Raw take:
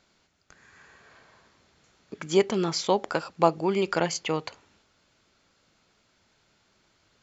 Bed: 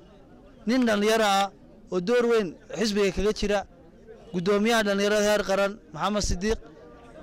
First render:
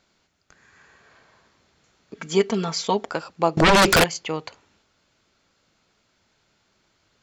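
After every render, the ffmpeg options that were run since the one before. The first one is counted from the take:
-filter_complex "[0:a]asettb=1/sr,asplit=3[s0][s1][s2];[s0]atrim=end=2.164[s3];[s1]atrim=start=2.16:end=3.06,asetpts=PTS-STARTPTS,afade=t=in:d=0.004:c=qsin,afade=t=out:st=0.896:d=0.004:c=qsin,aecho=1:1:4.4:0.86,atrim=end_sample=39690[s4];[s2]atrim=start=3.056[s5];[s3][s4]acrossfade=d=0.004:c1=hsin:c2=qsin[s6];[s6][s5]acrossfade=d=0.004:c1=qsin:c2=hsin,asettb=1/sr,asplit=3[s7][s8][s9];[s7]atrim=end=3.574[s10];[s8]atrim=start=3.57:end=4.04,asetpts=PTS-STARTPTS,afade=t=in:d=0.004:c=qsin,afade=t=out:st=0.466:d=0.004:c=qsin,aeval=exprs='0.282*sin(PI/2*7.94*val(0)/0.282)':c=same[s11];[s9]atrim=start=4.036[s12];[s10][s11]acrossfade=d=0.004:c1=hsin:c2=qsin[s13];[s13][s12]acrossfade=d=0.004:c1=qsin:c2=hsin"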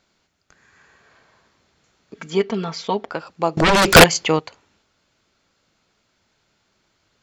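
-filter_complex "[0:a]asettb=1/sr,asplit=3[s0][s1][s2];[s0]atrim=end=2.304[s3];[s1]atrim=start=2.3:end=3.27,asetpts=PTS-STARTPTS,afade=t=in:d=0.004:c=qsin,afade=t=out:st=0.966:d=0.004:c=qsin,lowpass=4200[s4];[s2]atrim=start=3.266[s5];[s3][s4]acrossfade=d=0.004:c1=hsin:c2=qsin[s6];[s6][s5]acrossfade=d=0.004:c1=qsin:c2=hsin,asplit=3[s7][s8][s9];[s7]atrim=end=3.952[s10];[s8]atrim=start=3.948:end=4.392,asetpts=PTS-STARTPTS,volume=2.99[s11];[s9]atrim=start=4.388[s12];[s10][s11]acrossfade=d=0.004:c1=hsin:c2=hsin[s13];[s13][s12]acrossfade=d=0.004:c1=hsin:c2=hsin"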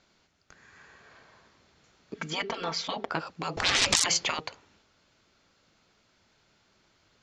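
-af "afftfilt=real='re*lt(hypot(re,im),0.251)':imag='im*lt(hypot(re,im),0.251)':win_size=1024:overlap=0.75,lowpass=f=7200:w=0.5412,lowpass=f=7200:w=1.3066"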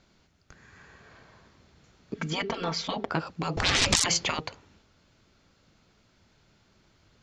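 -af "lowshelf=f=260:g=10.5"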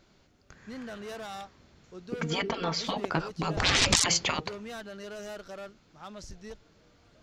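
-filter_complex "[1:a]volume=0.119[s0];[0:a][s0]amix=inputs=2:normalize=0"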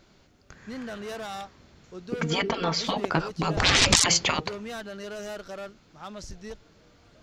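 -af "volume=1.58"

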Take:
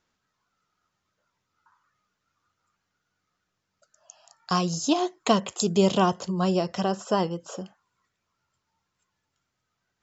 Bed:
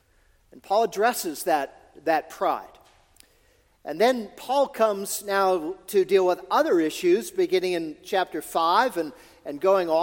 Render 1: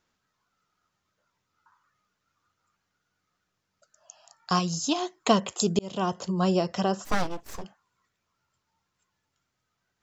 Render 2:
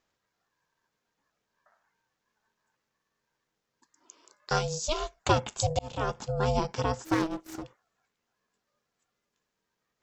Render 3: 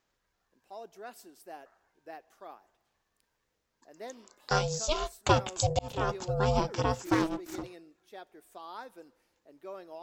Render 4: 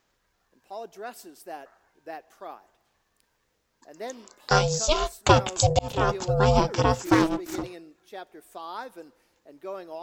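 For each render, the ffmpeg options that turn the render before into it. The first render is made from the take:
-filter_complex "[0:a]asettb=1/sr,asplit=3[s0][s1][s2];[s0]atrim=end=4.594[s3];[s1]atrim=start=4.59:end=5.18,asetpts=PTS-STARTPTS,afade=t=in:d=0.004:c=qsin,afade=t=out:st=0.586:d=0.004:c=qsin,equalizer=f=470:t=o:w=1.6:g=-7[s4];[s2]atrim=start=5.176[s5];[s3][s4]acrossfade=d=0.004:c1=hsin:c2=qsin[s6];[s6][s5]acrossfade=d=0.004:c1=qsin:c2=hsin,asplit=3[s7][s8][s9];[s7]afade=t=out:st=7.04:d=0.02[s10];[s8]aeval=exprs='abs(val(0))':c=same,afade=t=in:st=7.04:d=0.02,afade=t=out:st=7.63:d=0.02[s11];[s9]afade=t=in:st=7.63:d=0.02[s12];[s10][s11][s12]amix=inputs=3:normalize=0,asplit=2[s13][s14];[s13]atrim=end=5.79,asetpts=PTS-STARTPTS,afade=t=out:st=5.786:d=0.004:c=hsin[s15];[s14]atrim=start=5.79,asetpts=PTS-STARTPTS,afade=t=in:d=0.5[s16];[s15][s16]concat=n=2:v=0:a=1"
-af "aeval=exprs='val(0)*sin(2*PI*320*n/s)':c=same"
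-filter_complex "[1:a]volume=0.0668[s0];[0:a][s0]amix=inputs=2:normalize=0"
-af "volume=2.24,alimiter=limit=0.708:level=0:latency=1"

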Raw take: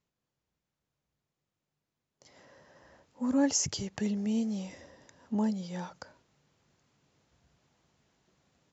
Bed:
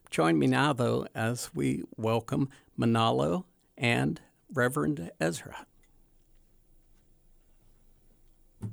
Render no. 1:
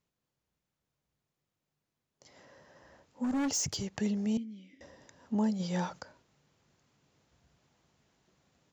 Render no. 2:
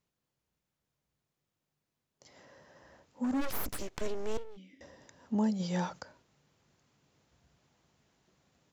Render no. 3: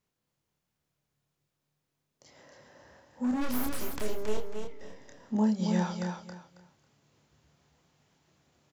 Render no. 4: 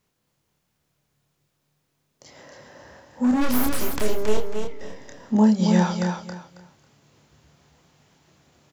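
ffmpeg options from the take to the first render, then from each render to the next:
-filter_complex "[0:a]asettb=1/sr,asplit=3[s0][s1][s2];[s0]atrim=end=3.244[s3];[s1]atrim=start=3.24:end=3.85,asetpts=PTS-STARTPTS,afade=t=in:d=0.004:c=qsin,afade=t=out:st=0.606:d=0.004:c=qsin,volume=25.1,asoftclip=hard,volume=0.0398[s4];[s2]atrim=start=3.846[s5];[s3][s4]acrossfade=d=0.004:c1=hsin:c2=qsin[s6];[s6][s5]acrossfade=d=0.004:c1=qsin:c2=hsin,asettb=1/sr,asplit=3[s7][s8][s9];[s7]atrim=end=4.374[s10];[s8]atrim=start=4.37:end=4.81,asetpts=PTS-STARTPTS,afade=t=in:d=0.004:c=qsin,afade=t=out:st=0.436:d=0.004:c=qsin,asplit=3[s11][s12][s13];[s11]bandpass=f=270:t=q:w=8,volume=1[s14];[s12]bandpass=f=2290:t=q:w=8,volume=0.501[s15];[s13]bandpass=f=3010:t=q:w=8,volume=0.355[s16];[s14][s15][s16]amix=inputs=3:normalize=0[s17];[s9]atrim=start=4.806[s18];[s10][s17]acrossfade=d=0.004:c1=hsin:c2=qsin[s19];[s19][s18]acrossfade=d=0.004:c1=qsin:c2=hsin,asplit=3[s20][s21][s22];[s20]afade=t=out:st=5.59:d=0.02[s23];[s21]acontrast=46,afade=t=in:st=5.59:d=0.02,afade=t=out:st=5.99:d=0.02[s24];[s22]afade=t=in:st=5.99:d=0.02[s25];[s23][s24][s25]amix=inputs=3:normalize=0"
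-filter_complex "[0:a]asplit=3[s0][s1][s2];[s0]afade=t=out:st=3.4:d=0.02[s3];[s1]aeval=exprs='abs(val(0))':c=same,afade=t=in:st=3.4:d=0.02,afade=t=out:st=4.56:d=0.02[s4];[s2]afade=t=in:st=4.56:d=0.02[s5];[s3][s4][s5]amix=inputs=3:normalize=0"
-filter_complex "[0:a]asplit=2[s0][s1];[s1]adelay=28,volume=0.631[s2];[s0][s2]amix=inputs=2:normalize=0,asplit=2[s3][s4];[s4]aecho=0:1:273|546|819:0.531|0.127|0.0306[s5];[s3][s5]amix=inputs=2:normalize=0"
-af "volume=2.99"

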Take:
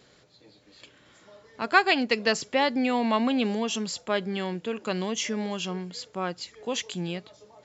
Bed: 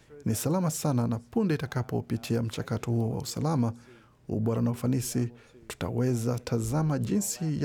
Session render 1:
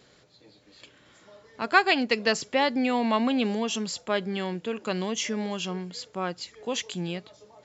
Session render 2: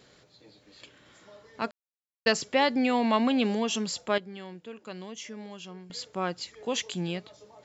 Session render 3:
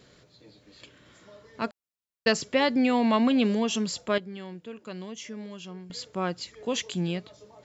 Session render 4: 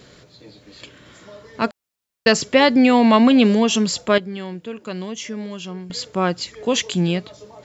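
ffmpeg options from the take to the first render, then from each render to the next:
-af anull
-filter_complex "[0:a]asplit=5[s0][s1][s2][s3][s4];[s0]atrim=end=1.71,asetpts=PTS-STARTPTS,afade=t=out:st=1.706:d=0.004:c=hsin[s5];[s1]atrim=start=1.71:end=2.26,asetpts=PTS-STARTPTS,volume=0[s6];[s2]atrim=start=2.26:end=4.182,asetpts=PTS-STARTPTS,afade=t=in:d=0.004:c=hsin[s7];[s3]atrim=start=4.178:end=5.902,asetpts=PTS-STARTPTS,volume=0.266[s8];[s4]atrim=start=5.898[s9];[s5][s6][s7]concat=n=3:v=0:a=1[s10];[s10][s8]acrossfade=d=0.004:c1=hsin:c2=hsin[s11];[s11][s9]acrossfade=d=0.004:c1=hsin:c2=hsin"
-af "lowshelf=f=270:g=5.5,bandreject=f=810:w=12"
-af "volume=2.99,alimiter=limit=0.794:level=0:latency=1"

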